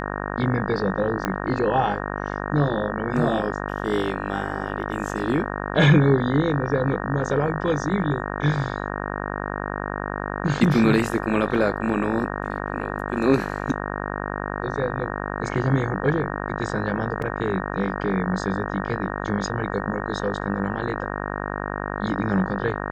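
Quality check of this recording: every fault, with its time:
buzz 50 Hz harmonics 37 -29 dBFS
1.25 pop -9 dBFS
17.22 gap 3.1 ms

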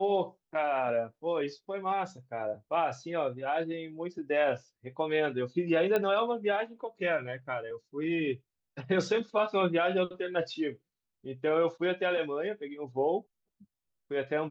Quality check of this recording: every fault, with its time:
5.96 pop -16 dBFS

